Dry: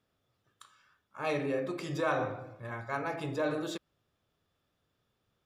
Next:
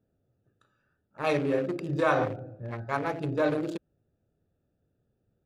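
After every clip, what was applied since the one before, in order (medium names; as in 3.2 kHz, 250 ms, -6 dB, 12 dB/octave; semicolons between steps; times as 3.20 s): local Wiener filter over 41 samples; trim +6.5 dB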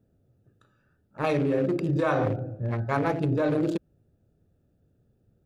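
bass shelf 400 Hz +7.5 dB; in parallel at -1 dB: compressor with a negative ratio -26 dBFS, ratio -0.5; on the sum: trim -4.5 dB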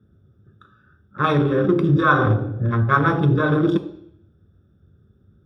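reverberation RT60 0.65 s, pre-delay 3 ms, DRR 7.5 dB; trim -4 dB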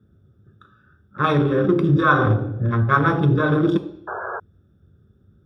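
painted sound noise, 4.07–4.40 s, 360–1700 Hz -29 dBFS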